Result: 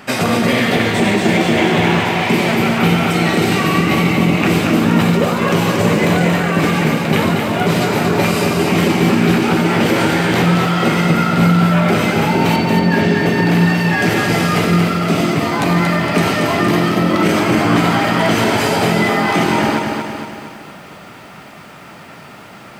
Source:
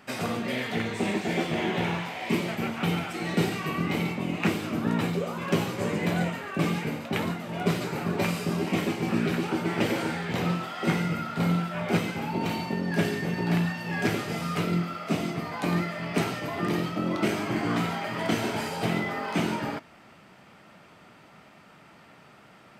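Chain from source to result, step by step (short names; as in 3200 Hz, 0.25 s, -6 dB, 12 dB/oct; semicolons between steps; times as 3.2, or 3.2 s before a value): 12.56–13.26 air absorption 97 m; maximiser +20 dB; lo-fi delay 0.231 s, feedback 55%, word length 7-bit, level -4.5 dB; gain -5 dB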